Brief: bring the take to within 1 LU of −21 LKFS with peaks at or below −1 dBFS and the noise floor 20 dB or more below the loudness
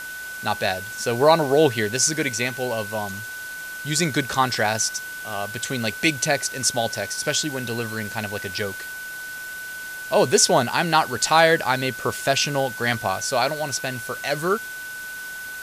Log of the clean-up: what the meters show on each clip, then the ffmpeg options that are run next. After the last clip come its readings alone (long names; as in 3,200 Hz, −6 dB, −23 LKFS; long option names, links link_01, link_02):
interfering tone 1,500 Hz; level of the tone −32 dBFS; background noise floor −34 dBFS; target noise floor −43 dBFS; integrated loudness −22.5 LKFS; sample peak −2.5 dBFS; target loudness −21.0 LKFS
→ -af "bandreject=frequency=1500:width=30"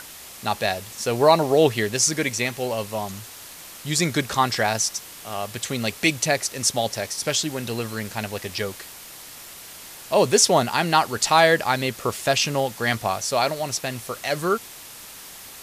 interfering tone none found; background noise floor −41 dBFS; target noise floor −43 dBFS
→ -af "afftdn=noise_reduction=6:noise_floor=-41"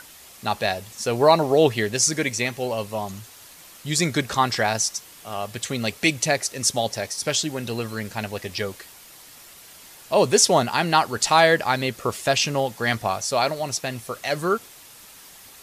background noise floor −46 dBFS; integrated loudness −22.5 LKFS; sample peak −3.0 dBFS; target loudness −21.0 LKFS
→ -af "volume=1.5dB"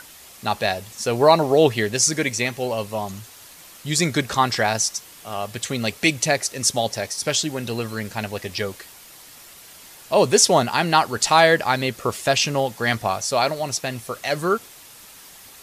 integrated loudness −21.0 LKFS; sample peak −1.5 dBFS; background noise floor −45 dBFS